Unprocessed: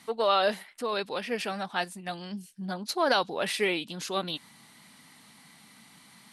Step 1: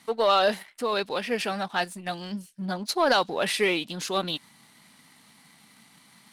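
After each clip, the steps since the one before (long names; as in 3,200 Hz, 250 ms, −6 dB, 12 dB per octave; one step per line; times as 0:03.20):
leveller curve on the samples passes 1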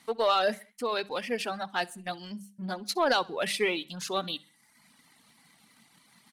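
reverb reduction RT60 0.83 s
mains-hum notches 50/100/150/200 Hz
repeating echo 65 ms, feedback 40%, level −23.5 dB
level −3 dB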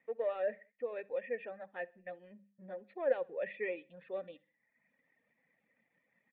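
formant resonators in series e
level +1 dB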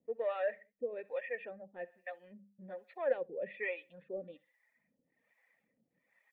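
two-band tremolo in antiphase 1.2 Hz, depth 100%, crossover 540 Hz
level +5 dB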